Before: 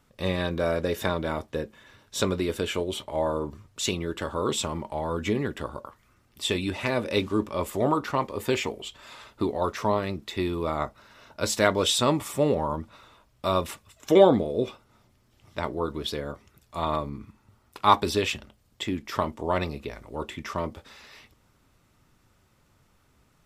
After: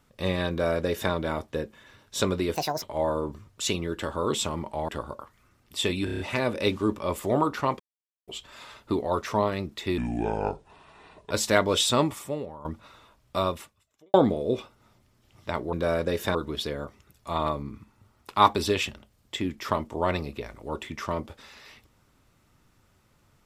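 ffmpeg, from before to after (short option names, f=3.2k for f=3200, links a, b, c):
-filter_complex "[0:a]asplit=17[a][b][c][d][e][f][g][h][i][j][k][l][m][n][o][p][q];[a]atrim=end=2.554[r];[b]atrim=start=2.55:end=3.01,asetpts=PTS-STARTPTS,asetrate=73647,aresample=44100,atrim=end_sample=12147,asetpts=PTS-STARTPTS[s];[c]atrim=start=3.006:end=5.072[t];[d]atrim=start=5.538:end=6.732[u];[e]atrim=start=6.698:end=6.732[v];[f]atrim=start=6.698:end=6.732[w];[g]atrim=start=6.698:end=6.732[x];[h]atrim=start=6.698:end=6.732[y];[i]atrim=start=6.698:end=8.3,asetpts=PTS-STARTPTS,afade=t=out:st=1.598:d=0.004:c=hsin[z];[j]atrim=start=8.3:end=8.78,asetpts=PTS-STARTPTS,volume=0[aa];[k]atrim=start=8.78:end=10.484,asetpts=PTS-STARTPTS,afade=t=in:d=0.004:c=hsin[ab];[l]atrim=start=10.48:end=11.4,asetpts=PTS-STARTPTS,asetrate=30429,aresample=44100,atrim=end_sample=58800,asetpts=PTS-STARTPTS[ac];[m]atrim=start=11.396:end=12.74,asetpts=PTS-STARTPTS,afade=t=out:st=0.724:d=0.62:c=qua:silence=0.158489[ad];[n]atrim=start=12.74:end=14.23,asetpts=PTS-STARTPTS,afade=t=in:d=0.004:c=hsin:silence=0.158489,afade=t=out:st=0.72:d=0.77:c=qua[ae];[o]atrim=start=14.23:end=15.822,asetpts=PTS-STARTPTS,afade=t=in:d=0.004:c=hsin[af];[p]atrim=start=0.498:end=1.122[ag];[q]atrim=start=15.818[ah];[r][s]acrossfade=d=0.004:c1=hsin:c2=hsin[ai];[ai][t]acrossfade=d=0.004:c1=hsin:c2=hsin[aj];[aj][u]acrossfade=d=0.004:c1=hsin:c2=hsin[ak];[ak][v]acrossfade=d=0.004:c1=hsin:c2=hsin[al];[al][w]acrossfade=d=0.004:c1=hsin:c2=hsin[am];[am][x]acrossfade=d=0.004:c1=hsin:c2=hsin[an];[an][y]acrossfade=d=0.004:c1=hsin:c2=hsin[ao];[z][aa][ab]concat=n=3:v=0:a=1[ap];[ao][ap]acrossfade=d=0.004:c1=hsin:c2=hsin[aq];[aq][ac]acrossfade=d=0.004:c1=hsin:c2=hsin[ar];[ad][ae][af]concat=n=3:v=0:a=1[as];[ar][as]acrossfade=d=0.004:c1=hsin:c2=hsin[at];[at][ag]acrossfade=d=0.004:c1=hsin:c2=hsin[au];[au][ah]acrossfade=d=0.004:c1=hsin:c2=hsin"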